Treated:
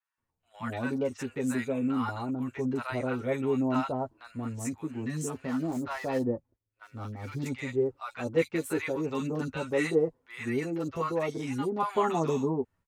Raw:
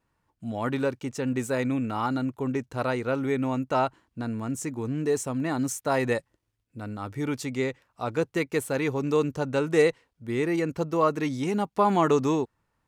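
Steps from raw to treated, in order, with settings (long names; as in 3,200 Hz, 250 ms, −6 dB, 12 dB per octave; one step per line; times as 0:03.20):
0:05.27–0:07.42: running median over 15 samples
three-band delay without the direct sound mids, highs, lows 40/180 ms, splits 890/4,400 Hz
noise gate −54 dBFS, range −7 dB
multi-voice chorus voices 6, 0.25 Hz, delay 10 ms, depth 2.7 ms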